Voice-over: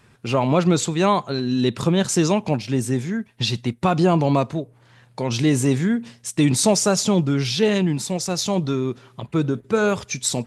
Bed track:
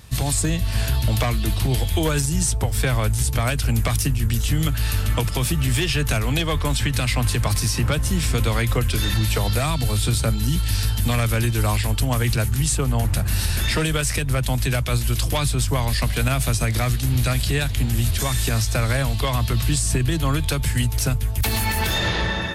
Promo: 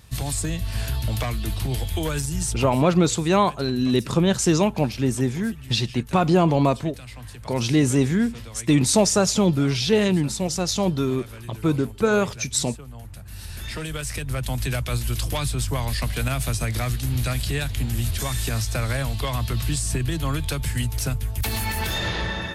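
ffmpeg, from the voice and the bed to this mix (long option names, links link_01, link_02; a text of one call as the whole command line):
ffmpeg -i stem1.wav -i stem2.wav -filter_complex "[0:a]adelay=2300,volume=-0.5dB[link_01];[1:a]volume=10dB,afade=type=out:start_time=2.55:duration=0.26:silence=0.199526,afade=type=in:start_time=13.25:duration=1.41:silence=0.177828[link_02];[link_01][link_02]amix=inputs=2:normalize=0" out.wav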